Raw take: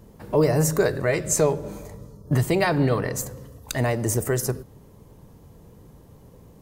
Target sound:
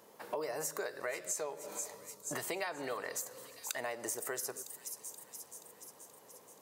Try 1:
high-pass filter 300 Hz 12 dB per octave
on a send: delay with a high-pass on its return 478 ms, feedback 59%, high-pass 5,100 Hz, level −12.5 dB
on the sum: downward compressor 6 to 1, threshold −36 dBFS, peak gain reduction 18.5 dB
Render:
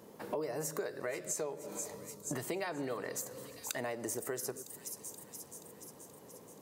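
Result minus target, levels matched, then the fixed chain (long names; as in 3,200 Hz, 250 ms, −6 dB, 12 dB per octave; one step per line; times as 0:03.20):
250 Hz band +6.0 dB
high-pass filter 620 Hz 12 dB per octave
on a send: delay with a high-pass on its return 478 ms, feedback 59%, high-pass 5,100 Hz, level −12.5 dB
on the sum: downward compressor 6 to 1, threshold −36 dBFS, peak gain reduction 15.5 dB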